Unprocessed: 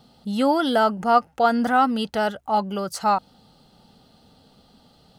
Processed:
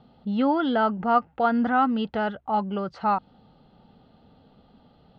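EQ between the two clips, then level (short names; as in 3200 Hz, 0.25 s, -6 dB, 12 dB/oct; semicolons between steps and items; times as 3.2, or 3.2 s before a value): LPF 3700 Hz 24 dB/oct; dynamic EQ 580 Hz, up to -5 dB, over -30 dBFS, Q 1.5; high shelf 2300 Hz -9 dB; 0.0 dB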